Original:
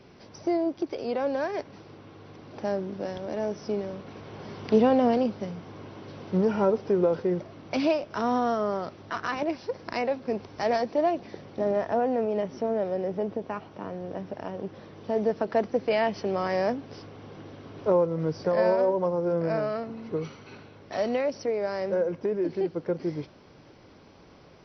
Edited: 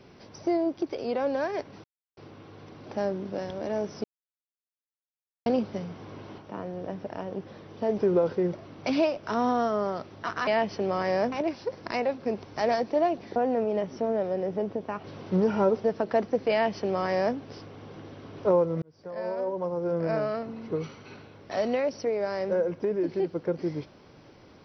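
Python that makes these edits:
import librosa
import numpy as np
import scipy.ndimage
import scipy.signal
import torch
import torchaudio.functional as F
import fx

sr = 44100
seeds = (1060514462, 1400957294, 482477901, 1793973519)

y = fx.edit(x, sr, fx.insert_silence(at_s=1.84, length_s=0.33),
    fx.silence(start_s=3.71, length_s=1.42),
    fx.swap(start_s=6.05, length_s=0.8, other_s=13.65, other_length_s=1.6),
    fx.cut(start_s=11.38, length_s=0.59),
    fx.duplicate(start_s=15.92, length_s=0.85, to_s=9.34),
    fx.fade_in_span(start_s=18.23, length_s=1.36), tone=tone)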